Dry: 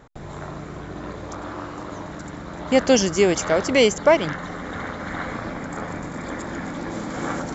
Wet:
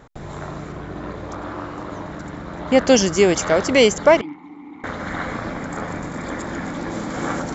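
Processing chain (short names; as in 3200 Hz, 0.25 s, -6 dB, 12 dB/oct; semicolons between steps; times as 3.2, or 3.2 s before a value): 0.72–2.87 high shelf 6400 Hz -11.5 dB; 4.21–4.84 vowel filter u; gain +2.5 dB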